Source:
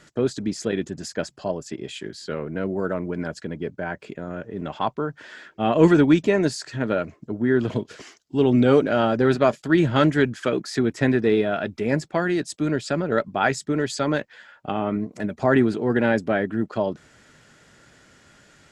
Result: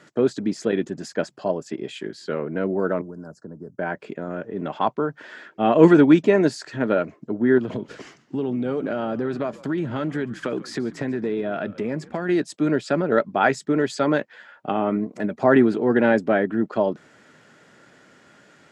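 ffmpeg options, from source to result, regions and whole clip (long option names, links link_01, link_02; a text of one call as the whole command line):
ffmpeg -i in.wav -filter_complex "[0:a]asettb=1/sr,asplit=3[link_01][link_02][link_03];[link_01]atrim=end=3.014[link_04];[link_02]atrim=start=3.01:end=3.79,asetpts=PTS-STARTPTS,afade=type=in:duration=0.004:curve=qsin,afade=type=out:start_time=0.776:duration=0.004:curve=qsin,asuperstop=centerf=2700:order=8:qfactor=0.8,acrossover=split=150|4900[link_05][link_06][link_07];[link_05]acompressor=threshold=-41dB:ratio=4[link_08];[link_06]acompressor=threshold=-42dB:ratio=4[link_09];[link_07]acompressor=threshold=-57dB:ratio=4[link_10];[link_08][link_09][link_10]amix=inputs=3:normalize=0[link_11];[link_03]atrim=start=3.786[link_12];[link_04][link_11]acrossfade=duration=0.004:curve1=hsin:curve2=qsin[link_13];[link_13][link_12]acrossfade=duration=0.004:curve1=qsin:curve2=hsin,asettb=1/sr,asplit=3[link_14][link_15][link_16];[link_14]atrim=end=7.584[link_17];[link_15]atrim=start=7.58:end=12.29,asetpts=PTS-STARTPTS,afade=type=in:duration=0.004:curve=qsin,afade=type=out:start_time=4.706:duration=0.004:curve=qsin,equalizer=frequency=130:width=0.66:gain=4.5,acompressor=threshold=-24dB:ratio=6:attack=3.2:release=140:knee=1:detection=peak,asplit=5[link_18][link_19][link_20][link_21][link_22];[link_19]adelay=141,afreqshift=-86,volume=-19.5dB[link_23];[link_20]adelay=282,afreqshift=-172,volume=-25.7dB[link_24];[link_21]adelay=423,afreqshift=-258,volume=-31.9dB[link_25];[link_22]adelay=564,afreqshift=-344,volume=-38.1dB[link_26];[link_18][link_23][link_24][link_25][link_26]amix=inputs=5:normalize=0,atrim=end_sample=207711[link_27];[link_16]atrim=start=12.286[link_28];[link_17][link_27]acrossfade=duration=0.004:curve1=hsin:curve2=qsin[link_29];[link_29][link_28]acrossfade=duration=0.004:curve1=qsin:curve2=hsin,highpass=180,highshelf=frequency=3000:gain=-9.5,volume=3.5dB" out.wav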